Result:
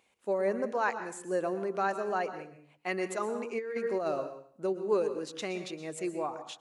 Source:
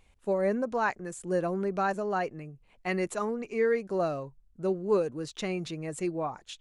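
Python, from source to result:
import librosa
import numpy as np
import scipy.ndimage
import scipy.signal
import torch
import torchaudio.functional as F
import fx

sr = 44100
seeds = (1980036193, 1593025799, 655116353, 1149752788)

y = scipy.signal.sosfilt(scipy.signal.butter(2, 280.0, 'highpass', fs=sr, output='sos'), x)
y = fx.rev_plate(y, sr, seeds[0], rt60_s=0.53, hf_ratio=0.95, predelay_ms=105, drr_db=10.0)
y = fx.over_compress(y, sr, threshold_db=-29.0, ratio=-0.5, at=(3.35, 4.67))
y = F.gain(torch.from_numpy(y), -1.5).numpy()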